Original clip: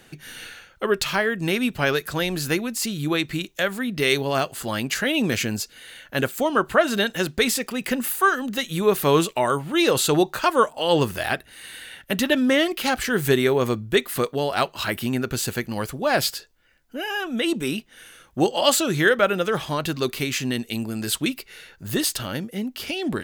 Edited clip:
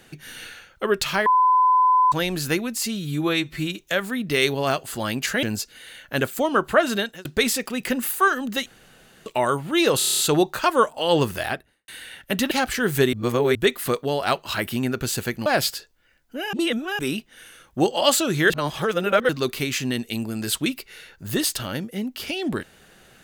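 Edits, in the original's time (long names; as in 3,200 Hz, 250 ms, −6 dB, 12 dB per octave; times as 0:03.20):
0:01.26–0:02.12: beep over 1,010 Hz −13.5 dBFS
0:02.83–0:03.47: time-stretch 1.5×
0:05.11–0:05.44: remove
0:06.92–0:07.26: fade out
0:08.67–0:09.27: fill with room tone
0:09.99: stutter 0.03 s, 8 plays
0:11.18–0:11.68: fade out and dull
0:12.31–0:12.81: remove
0:13.43–0:13.85: reverse
0:15.76–0:16.06: remove
0:17.13–0:17.59: reverse
0:19.10–0:19.89: reverse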